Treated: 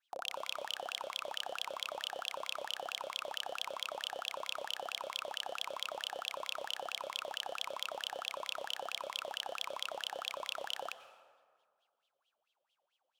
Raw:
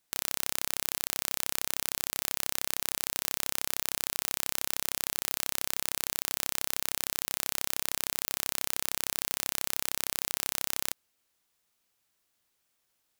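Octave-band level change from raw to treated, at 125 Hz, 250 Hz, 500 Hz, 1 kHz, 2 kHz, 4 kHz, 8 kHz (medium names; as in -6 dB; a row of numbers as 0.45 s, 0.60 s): under -20 dB, -16.0 dB, +2.5 dB, +1.0 dB, -5.0 dB, -2.0 dB, -18.5 dB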